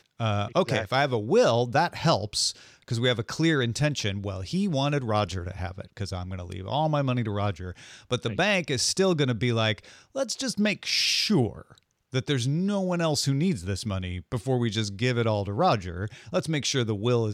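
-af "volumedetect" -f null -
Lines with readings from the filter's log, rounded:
mean_volume: -26.4 dB
max_volume: -11.1 dB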